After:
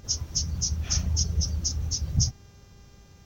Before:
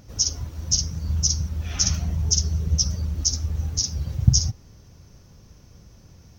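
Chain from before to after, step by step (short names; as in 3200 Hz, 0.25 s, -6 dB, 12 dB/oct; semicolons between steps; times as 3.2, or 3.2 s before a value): plain phase-vocoder stretch 0.51×; buzz 400 Hz, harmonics 19, -63 dBFS -3 dB/oct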